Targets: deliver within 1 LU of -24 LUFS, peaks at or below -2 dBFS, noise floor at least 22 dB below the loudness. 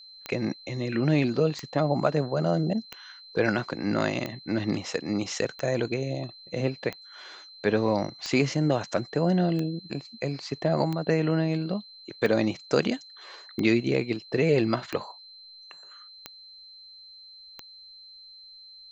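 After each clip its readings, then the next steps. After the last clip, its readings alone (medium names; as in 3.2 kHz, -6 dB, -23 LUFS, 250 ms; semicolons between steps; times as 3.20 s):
clicks found 14; steady tone 4.1 kHz; tone level -46 dBFS; loudness -27.5 LUFS; peak level -8.0 dBFS; loudness target -24.0 LUFS
-> de-click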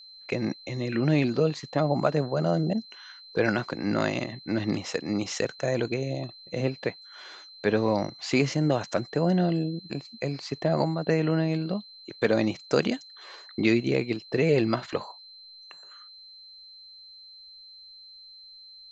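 clicks found 0; steady tone 4.1 kHz; tone level -46 dBFS
-> band-stop 4.1 kHz, Q 30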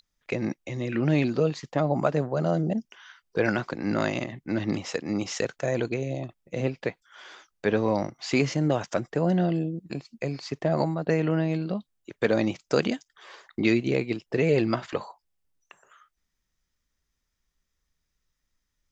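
steady tone not found; loudness -27.5 LUFS; peak level -8.0 dBFS; loudness target -24.0 LUFS
-> trim +3.5 dB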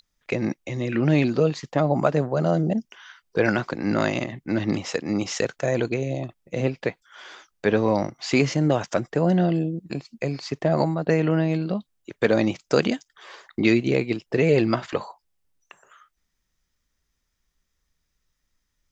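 loudness -24.0 LUFS; peak level -4.5 dBFS; noise floor -76 dBFS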